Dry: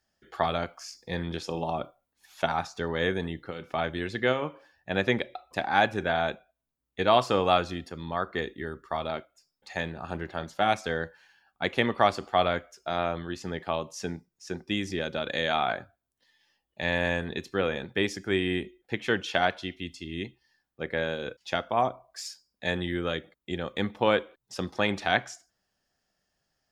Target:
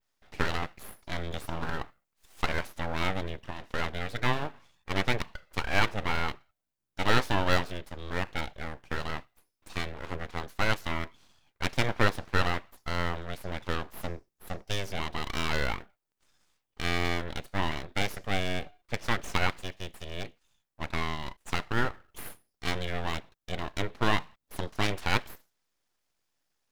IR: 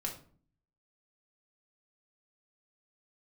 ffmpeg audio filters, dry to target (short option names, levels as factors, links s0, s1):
-af "aeval=exprs='abs(val(0))':c=same,adynamicequalizer=threshold=0.00282:dfrequency=7300:dqfactor=0.75:tfrequency=7300:tqfactor=0.75:attack=5:release=100:ratio=0.375:range=2.5:mode=cutabove:tftype=bell"